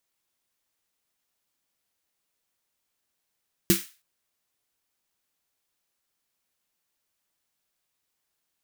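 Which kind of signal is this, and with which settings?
snare drum length 0.32 s, tones 190 Hz, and 340 Hz, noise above 1500 Hz, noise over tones -3.5 dB, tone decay 0.16 s, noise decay 0.34 s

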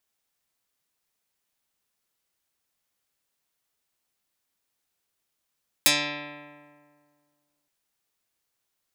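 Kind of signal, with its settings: plucked string D3, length 1.82 s, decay 1.96 s, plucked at 0.1, dark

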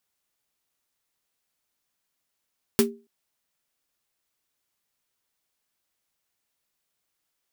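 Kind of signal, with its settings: snare drum length 0.28 s, tones 230 Hz, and 400 Hz, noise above 660 Hz, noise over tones -3 dB, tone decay 0.31 s, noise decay 0.12 s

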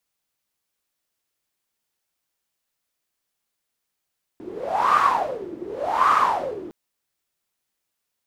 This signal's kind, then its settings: wind-like swept noise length 2.31 s, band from 330 Hz, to 1200 Hz, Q 11, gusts 2, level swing 18 dB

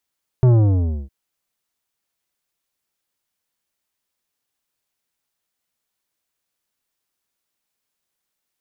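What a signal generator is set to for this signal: sub drop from 130 Hz, over 0.66 s, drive 11.5 dB, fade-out 0.62 s, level -10.5 dB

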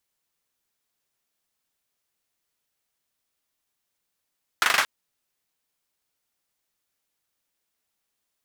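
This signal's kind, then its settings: hand clap length 0.23 s, bursts 5, apart 40 ms, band 1500 Hz, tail 0.27 s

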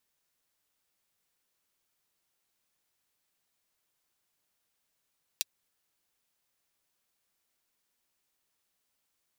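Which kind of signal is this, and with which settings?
closed hi-hat, high-pass 3400 Hz, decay 0.03 s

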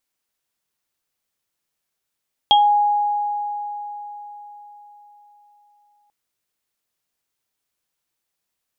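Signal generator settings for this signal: sine partials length 3.59 s, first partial 827 Hz, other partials 3260 Hz, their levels 1 dB, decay 4.37 s, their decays 0.21 s, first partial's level -10 dB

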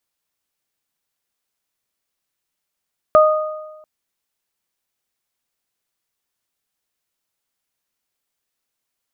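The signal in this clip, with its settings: additive tone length 0.69 s, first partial 618 Hz, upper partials -3 dB, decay 1.15 s, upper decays 0.99 s, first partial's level -7 dB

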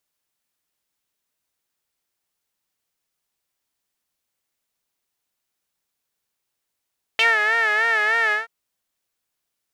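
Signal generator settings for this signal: synth patch with vibrato A4, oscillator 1 saw, oscillator 2 sine, interval +7 st, sub -24.5 dB, noise -19.5 dB, filter bandpass, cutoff 1600 Hz, Q 5.7, filter envelope 1 oct, filter decay 0.07 s, filter sustain 15%, attack 1.5 ms, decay 0.17 s, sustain -5.5 dB, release 0.15 s, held 1.13 s, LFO 3.3 Hz, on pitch 86 cents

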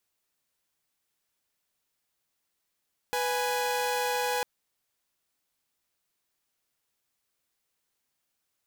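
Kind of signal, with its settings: chord B4/G#5 saw, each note -27 dBFS 1.30 s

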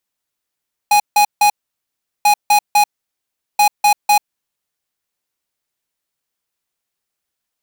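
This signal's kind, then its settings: beep pattern square 829 Hz, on 0.09 s, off 0.16 s, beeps 3, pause 0.75 s, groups 3, -10.5 dBFS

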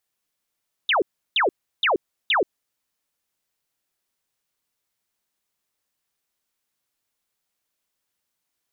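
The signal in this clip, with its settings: burst of laser zaps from 3900 Hz, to 320 Hz, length 0.13 s sine, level -16.5 dB, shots 4, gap 0.34 s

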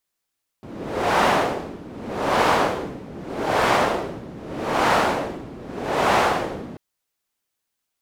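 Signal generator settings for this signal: wind-like swept noise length 6.14 s, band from 260 Hz, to 880 Hz, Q 1.1, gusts 5, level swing 19.5 dB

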